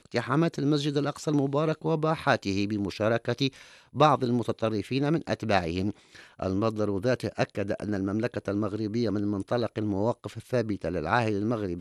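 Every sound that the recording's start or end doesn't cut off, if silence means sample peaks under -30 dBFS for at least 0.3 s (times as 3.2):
3.96–5.9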